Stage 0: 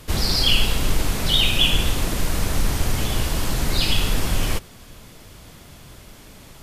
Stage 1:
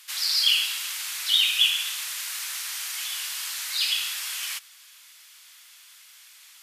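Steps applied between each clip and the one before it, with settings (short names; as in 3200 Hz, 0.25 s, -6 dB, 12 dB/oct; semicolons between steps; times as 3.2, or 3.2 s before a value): Bessel high-pass 2100 Hz, order 4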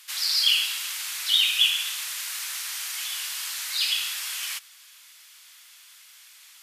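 nothing audible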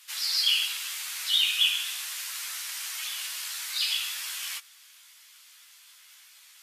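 chorus voices 6, 0.68 Hz, delay 13 ms, depth 2.3 ms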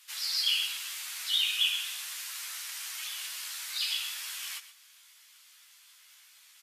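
echo 0.123 s -14 dB; gain -4 dB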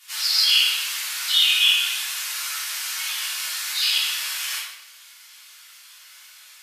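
shoebox room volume 240 m³, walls mixed, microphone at 3.3 m; gain +2 dB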